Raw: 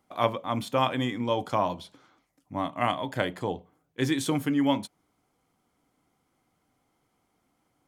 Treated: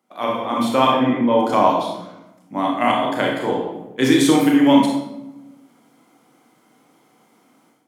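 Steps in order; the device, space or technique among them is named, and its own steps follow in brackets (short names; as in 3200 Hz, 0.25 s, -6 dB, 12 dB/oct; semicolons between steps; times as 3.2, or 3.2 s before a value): 0.9–1.38 LPF 1400 Hz -> 2400 Hz 12 dB/oct; far laptop microphone (reverb RT60 0.95 s, pre-delay 25 ms, DRR -1.5 dB; HPF 170 Hz 24 dB/oct; AGC gain up to 13.5 dB); gain -1 dB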